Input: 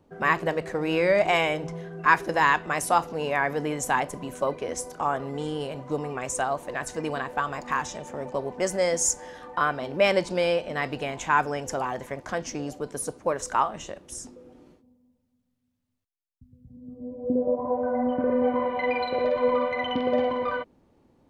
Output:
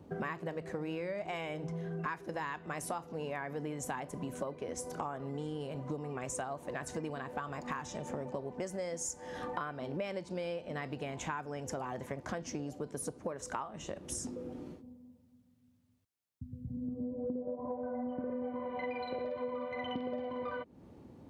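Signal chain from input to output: high-pass 71 Hz; bass shelf 360 Hz +8.5 dB; compression 12:1, threshold -38 dBFS, peak gain reduction 25.5 dB; trim +2.5 dB

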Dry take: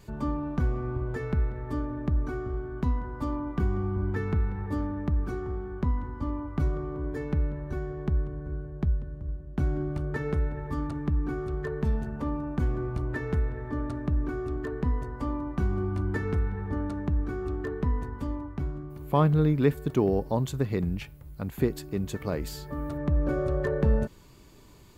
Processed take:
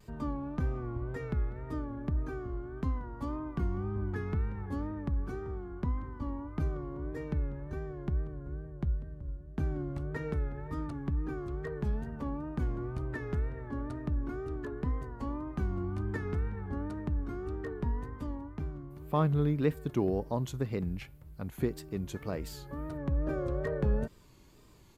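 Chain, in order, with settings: wow and flutter 90 cents; resampled via 32 kHz; trim -5.5 dB

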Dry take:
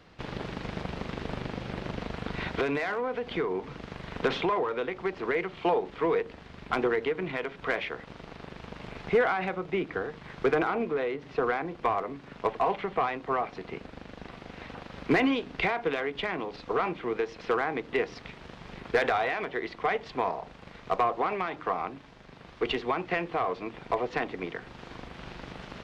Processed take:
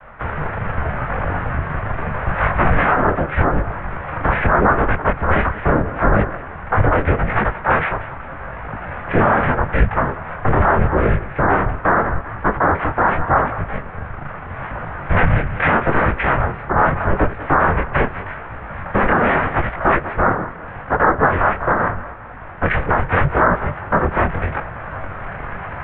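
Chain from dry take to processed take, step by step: high-order bell 580 Hz -9 dB 1.3 oct; noise-vocoded speech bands 6; distance through air 110 m; thinning echo 193 ms, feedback 45%, level -16 dB; mistuned SSB -310 Hz 260–2300 Hz; loudness maximiser +25 dB; detune thickener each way 28 cents

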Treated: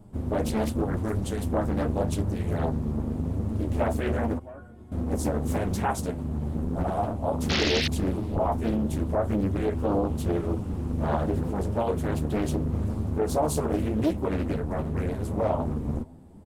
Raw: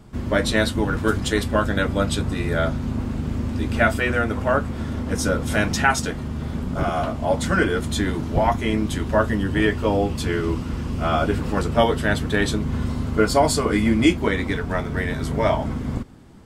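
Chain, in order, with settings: high-order bell 2.8 kHz -12 dB 2.8 oct; peak limiter -13.5 dBFS, peak gain reduction 7.5 dB; 4.38–4.92 s: feedback comb 360 Hz, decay 0.41 s, harmonics all, mix 90%; flange 0.85 Hz, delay 9.5 ms, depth 4.4 ms, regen -3%; 7.49–7.88 s: painted sound noise 1.9–4.8 kHz -28 dBFS; echo from a far wall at 82 m, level -28 dB; loudspeaker Doppler distortion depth 0.8 ms

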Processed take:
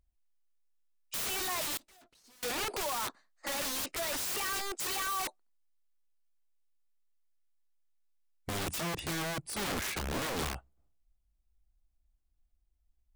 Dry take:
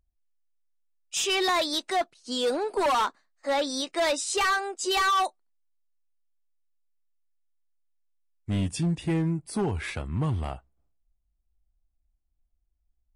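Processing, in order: integer overflow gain 30 dB; 1.77–2.43 s: valve stage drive 60 dB, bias 0.7

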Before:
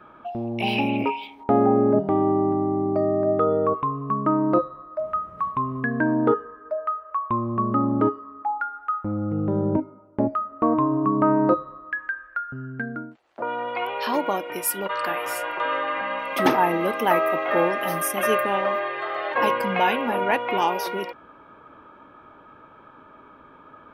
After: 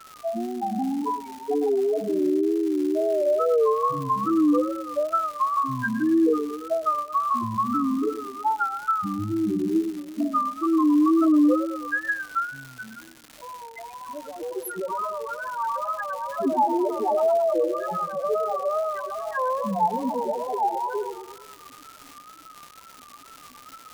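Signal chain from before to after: 12.47–14.40 s: pre-emphasis filter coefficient 0.8; in parallel at +0.5 dB: compression, threshold -28 dBFS, peak gain reduction 14 dB; on the sum: loudest bins only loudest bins 2; on a send: bucket-brigade echo 109 ms, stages 1024, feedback 55%, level -9 dB; on the sum: crackle 360 per s -33 dBFS; wow and flutter 95 cents

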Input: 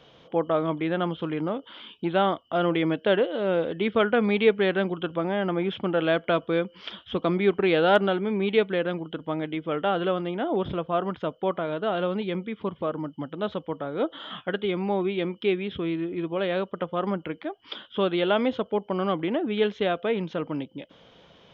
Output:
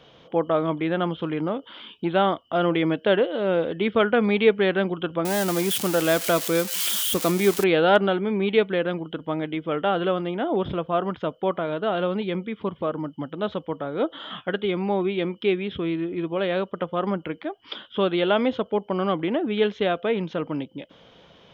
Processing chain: 5.25–7.64 s: zero-crossing glitches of -18 dBFS; trim +2 dB

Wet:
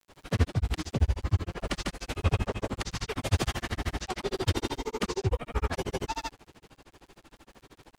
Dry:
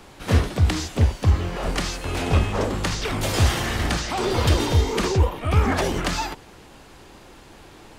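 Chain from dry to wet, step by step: granulator 67 ms, grains 13 per s, pitch spread up and down by 0 st; crackle 73 per s -45 dBFS; trim -4.5 dB

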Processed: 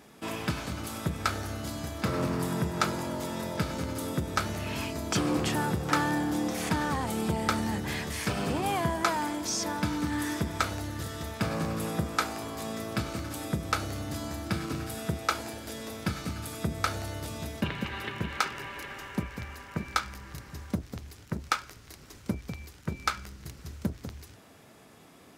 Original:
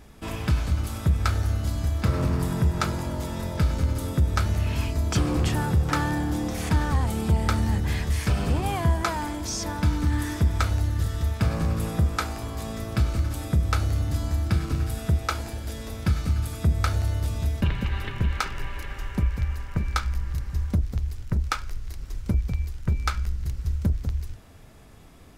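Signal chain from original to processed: high-pass 190 Hz 12 dB/octave

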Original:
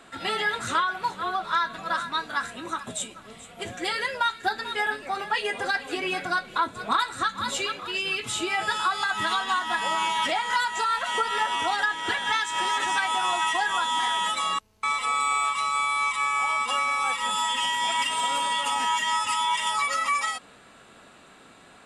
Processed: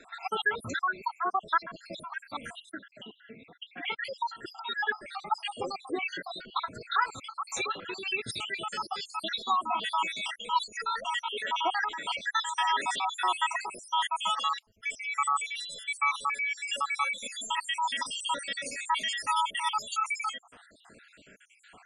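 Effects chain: random holes in the spectrogram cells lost 68%; 2.71–4.05 s: cabinet simulation 140–3100 Hz, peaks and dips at 290 Hz +6 dB, 570 Hz -6 dB, 1.2 kHz -6 dB; spectral gate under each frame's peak -25 dB strong

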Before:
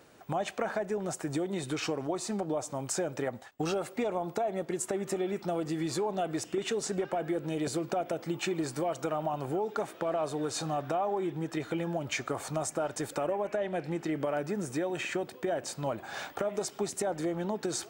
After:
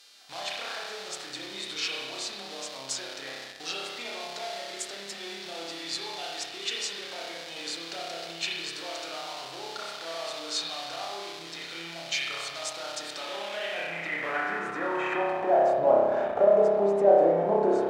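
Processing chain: spring tank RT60 1.4 s, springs 30 ms, chirp 70 ms, DRR -5 dB; mains buzz 400 Hz, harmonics 36, -58 dBFS -1 dB/octave; in parallel at -10 dB: Schmitt trigger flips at -31 dBFS; on the sum: band-pass sweep 4.2 kHz -> 610 Hz, 13.14–15.95 s; trim +9 dB

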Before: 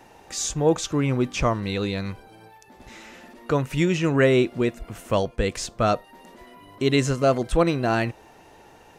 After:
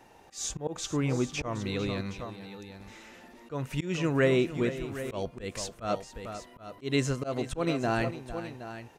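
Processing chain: multi-tap echo 451/769 ms -13.5/-13 dB; slow attack 149 ms; trim -6 dB

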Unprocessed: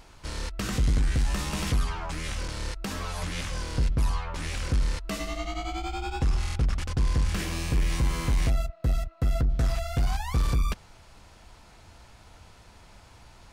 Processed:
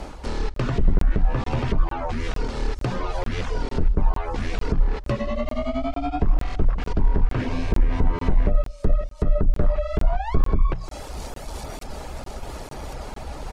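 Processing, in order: peaking EQ 610 Hz +9 dB 2.5 oct; feedback echo behind a high-pass 1101 ms, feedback 58%, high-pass 5.4 kHz, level -9 dB; reverb removal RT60 0.52 s; low-pass that closes with the level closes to 1.7 kHz, closed at -21 dBFS; in parallel at +1 dB: compression, threshold -37 dBFS, peak gain reduction 16 dB; on the sum: bass shelf 400 Hz +10 dB; hum notches 60/120/180/240 Hz; frequency shift -74 Hz; delay 161 ms -21.5 dB; reverse; upward compressor, threshold -20 dBFS; reverse; crackling interface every 0.45 s, samples 1024, zero, from 0.54 s; trim -3.5 dB

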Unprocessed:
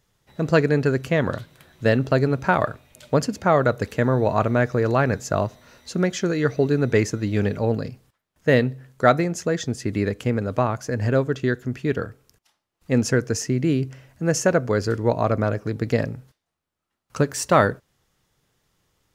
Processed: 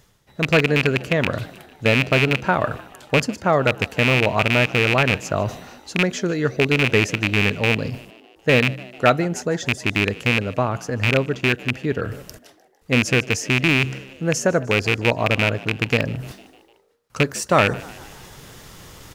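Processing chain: rattle on loud lows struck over -20 dBFS, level -6 dBFS; reverse; upward compressor, threshold -20 dBFS; reverse; frequency-shifting echo 151 ms, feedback 58%, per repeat +68 Hz, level -21 dB

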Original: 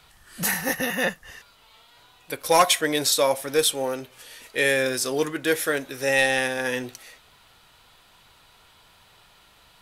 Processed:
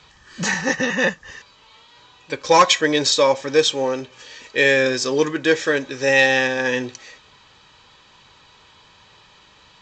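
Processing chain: comb of notches 700 Hz; trim +6 dB; µ-law 128 kbps 16 kHz

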